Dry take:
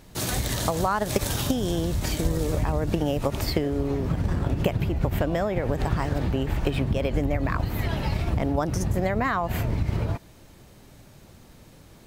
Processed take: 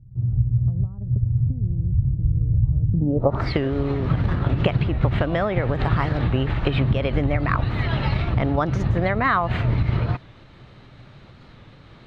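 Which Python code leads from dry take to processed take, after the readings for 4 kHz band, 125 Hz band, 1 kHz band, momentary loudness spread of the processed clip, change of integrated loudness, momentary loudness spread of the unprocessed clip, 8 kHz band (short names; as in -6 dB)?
-1.5 dB, +6.5 dB, +3.0 dB, 3 LU, +4.0 dB, 2 LU, under -20 dB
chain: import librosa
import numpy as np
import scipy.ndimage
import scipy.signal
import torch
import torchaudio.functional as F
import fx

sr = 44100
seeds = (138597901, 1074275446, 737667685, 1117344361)

p1 = fx.filter_sweep_lowpass(x, sr, from_hz=110.0, to_hz=2600.0, start_s=2.9, end_s=3.53, q=2.1)
p2 = fx.volume_shaper(p1, sr, bpm=138, per_beat=1, depth_db=-4, release_ms=104.0, shape='slow start')
p3 = p1 + (p2 * 10.0 ** (-2.0 / 20.0))
p4 = fx.graphic_eq_31(p3, sr, hz=(125, 1250, 2500, 4000), db=(8, 6, -5, 8))
p5 = fx.record_warp(p4, sr, rpm=45.0, depth_cents=100.0)
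y = p5 * 10.0 ** (-3.0 / 20.0)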